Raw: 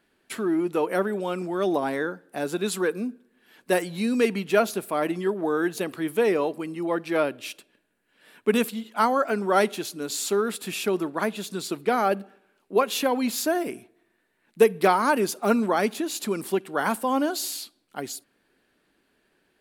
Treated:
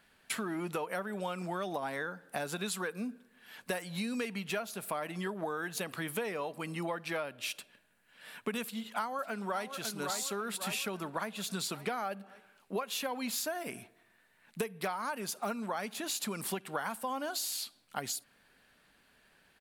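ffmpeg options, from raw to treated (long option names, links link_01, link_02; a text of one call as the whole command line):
ffmpeg -i in.wav -filter_complex "[0:a]asplit=2[link_01][link_02];[link_02]afade=type=in:start_time=8.63:duration=0.01,afade=type=out:start_time=9.7:duration=0.01,aecho=0:1:550|1100|1650|2200|2750:0.266073|0.119733|0.0538797|0.0242459|0.0109106[link_03];[link_01][link_03]amix=inputs=2:normalize=0,equalizer=frequency=340:width=1.5:gain=-13,acompressor=threshold=-37dB:ratio=12,volume=4.5dB" out.wav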